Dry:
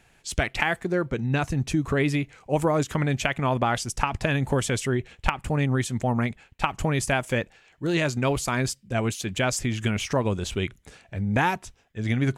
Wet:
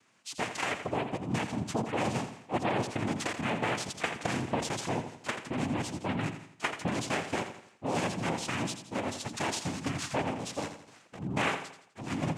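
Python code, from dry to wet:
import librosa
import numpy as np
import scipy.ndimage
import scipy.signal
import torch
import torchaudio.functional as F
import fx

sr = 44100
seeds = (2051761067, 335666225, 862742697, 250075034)

y = scipy.signal.sosfilt(scipy.signal.butter(2, 130.0, 'highpass', fs=sr, output='sos'), x)
y = fx.noise_vocoder(y, sr, seeds[0], bands=4)
y = fx.echo_feedback(y, sr, ms=84, feedback_pct=42, wet_db=-9.5)
y = y * 10.0 ** (-7.0 / 20.0)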